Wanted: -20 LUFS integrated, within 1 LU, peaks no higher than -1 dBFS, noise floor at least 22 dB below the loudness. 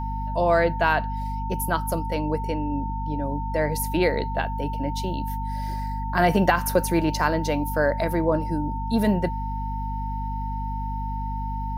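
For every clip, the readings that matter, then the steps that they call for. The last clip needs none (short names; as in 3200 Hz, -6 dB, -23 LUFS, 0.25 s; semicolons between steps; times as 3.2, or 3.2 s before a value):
hum 50 Hz; harmonics up to 250 Hz; hum level -27 dBFS; steady tone 900 Hz; tone level -31 dBFS; loudness -25.5 LUFS; peak -7.0 dBFS; loudness target -20.0 LUFS
-> notches 50/100/150/200/250 Hz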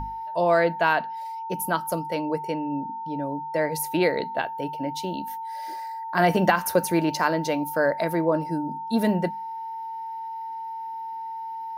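hum none; steady tone 900 Hz; tone level -31 dBFS
-> notch 900 Hz, Q 30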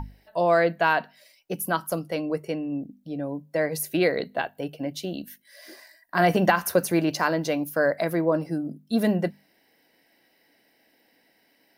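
steady tone none; loudness -25.5 LUFS; peak -8.0 dBFS; loudness target -20.0 LUFS
-> gain +5.5 dB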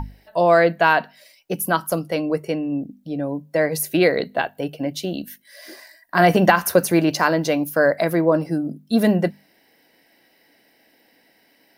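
loudness -20.0 LUFS; peak -2.5 dBFS; noise floor -60 dBFS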